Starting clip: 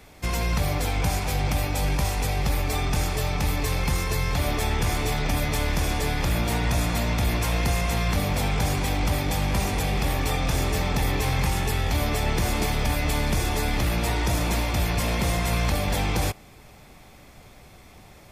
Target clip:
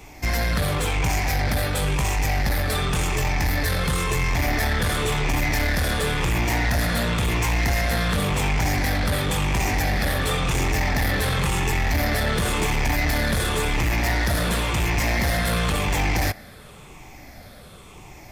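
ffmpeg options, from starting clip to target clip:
ffmpeg -i in.wav -af "afftfilt=real='re*pow(10,8/40*sin(2*PI*(0.7*log(max(b,1)*sr/1024/100)/log(2)-(-0.94)*(pts-256)/sr)))':imag='im*pow(10,8/40*sin(2*PI*(0.7*log(max(b,1)*sr/1024/100)/log(2)-(-0.94)*(pts-256)/sr)))':win_size=1024:overlap=0.75,adynamicequalizer=threshold=0.00398:dfrequency=1800:dqfactor=2.8:tfrequency=1800:tqfactor=2.8:attack=5:release=100:ratio=0.375:range=3.5:mode=boostabove:tftype=bell,asoftclip=type=tanh:threshold=-22dB,volume=4.5dB" out.wav

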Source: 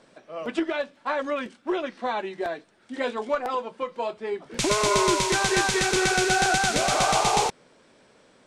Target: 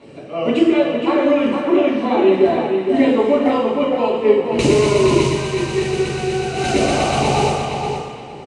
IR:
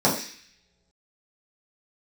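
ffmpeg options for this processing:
-filter_complex "[0:a]acompressor=threshold=-28dB:ratio=16,asplit=2[link_01][link_02];[link_02]adelay=465,lowpass=frequency=4400:poles=1,volume=-5dB,asplit=2[link_03][link_04];[link_04]adelay=465,lowpass=frequency=4400:poles=1,volume=0.22,asplit=2[link_05][link_06];[link_06]adelay=465,lowpass=frequency=4400:poles=1,volume=0.22[link_07];[link_01][link_03][link_05][link_07]amix=inputs=4:normalize=0,asettb=1/sr,asplit=3[link_08][link_09][link_10];[link_08]atrim=end=5.254[link_11];[link_09]atrim=start=5.25:end=6.57,asetpts=PTS-STARTPTS,afade=type=in:duration=0.004:curve=qsin,afade=type=out:start_time=1.316:duration=0.004:curve=qsin,agate=range=-7dB:threshold=-28dB:ratio=16:detection=peak[link_12];[link_10]atrim=start=6.566[link_13];[link_11][link_12]acrossfade=duration=0.004:curve1=hsin:curve2=qsin[link_14];[link_14][link_13]acrossfade=duration=0.004:curve1=qsin:curve2=hsin[link_15];[1:a]atrim=start_sample=2205,asetrate=22491,aresample=44100[link_16];[link_15][link_16]afir=irnorm=-1:irlink=0,volume=-7.5dB"

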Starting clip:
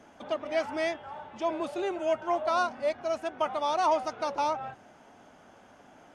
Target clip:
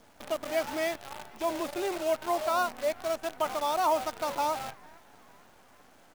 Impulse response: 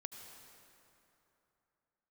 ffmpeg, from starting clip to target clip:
-filter_complex "[0:a]acontrast=46,asplit=5[link_01][link_02][link_03][link_04][link_05];[link_02]adelay=452,afreqshift=54,volume=-22.5dB[link_06];[link_03]adelay=904,afreqshift=108,volume=-27.9dB[link_07];[link_04]adelay=1356,afreqshift=162,volume=-33.2dB[link_08];[link_05]adelay=1808,afreqshift=216,volume=-38.6dB[link_09];[link_01][link_06][link_07][link_08][link_09]amix=inputs=5:normalize=0,acrusher=bits=6:dc=4:mix=0:aa=0.000001,volume=-6.5dB"

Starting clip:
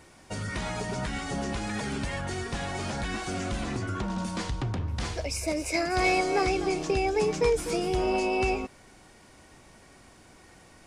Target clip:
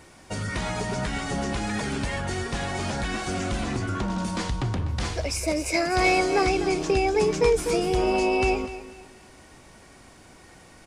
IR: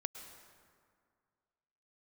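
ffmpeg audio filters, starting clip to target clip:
-af "aecho=1:1:248|496|744:0.188|0.0584|0.0181,volume=3.5dB"

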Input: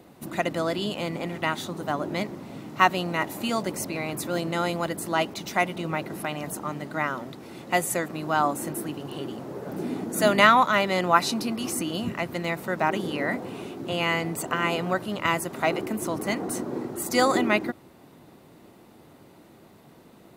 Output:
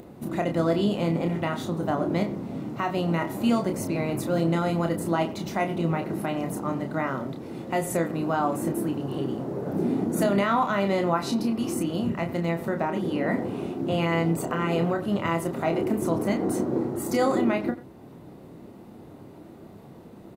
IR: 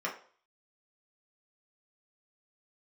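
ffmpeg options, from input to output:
-filter_complex "[0:a]tiltshelf=frequency=910:gain=6,asettb=1/sr,asplit=3[link_01][link_02][link_03];[link_01]atrim=end=11.214[link_04];[link_02]atrim=start=11.21:end=13.26,asetpts=PTS-STARTPTS,afade=type=in:duration=0.004:curve=qsin,afade=type=out:start_time=2.046:duration=0.004:curve=qsin,acompressor=threshold=-24dB:ratio=3[link_05];[link_03]atrim=start=13.256[link_06];[link_04][link_05]acrossfade=duration=0.004:curve1=hsin:curve2=qsin[link_07];[link_07][link_06]acrossfade=duration=0.004:curve1=qsin:curve2=hsin,alimiter=limit=-14.5dB:level=0:latency=1:release=147,acompressor=mode=upward:threshold=-42dB:ratio=2.5,asplit=2[link_08][link_09];[link_09]adelay=30,volume=-6dB[link_10];[link_08][link_10]amix=inputs=2:normalize=0,asplit=2[link_11][link_12];[link_12]adelay=90,highpass=300,lowpass=3400,asoftclip=type=hard:threshold=-20dB,volume=-15dB[link_13];[link_11][link_13]amix=inputs=2:normalize=0"

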